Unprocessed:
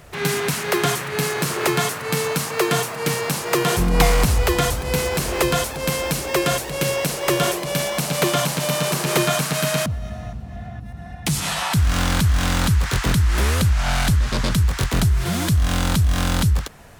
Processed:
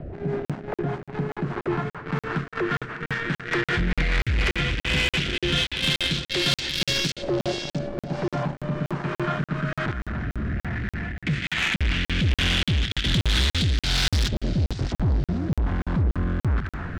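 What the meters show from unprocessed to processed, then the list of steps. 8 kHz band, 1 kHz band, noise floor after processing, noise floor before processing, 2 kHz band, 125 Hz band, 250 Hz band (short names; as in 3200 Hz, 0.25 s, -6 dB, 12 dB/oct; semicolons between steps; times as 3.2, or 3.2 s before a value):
-13.5 dB, -9.0 dB, under -85 dBFS, -34 dBFS, -2.0 dB, -4.5 dB, -3.5 dB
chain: in parallel at -7.5 dB: sine folder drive 6 dB, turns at -2 dBFS; on the sum: companded quantiser 2-bit; band shelf 730 Hz -9.5 dB; reverse; compressor 5:1, threshold -15 dBFS, peak gain reduction 12 dB; reverse; limiter -10 dBFS, peak gain reduction 10 dB; LFO low-pass saw up 0.14 Hz 610–5100 Hz; steep low-pass 9100 Hz 48 dB/oct; feedback echo 0.643 s, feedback 24%, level -14.5 dB; rotary speaker horn 5 Hz, later 1.2 Hz, at 3.91; soft clip -17.5 dBFS, distortion -13 dB; dynamic EQ 3400 Hz, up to +5 dB, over -44 dBFS, Q 4.7; crackling interface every 0.29 s, samples 2048, zero, from 0.45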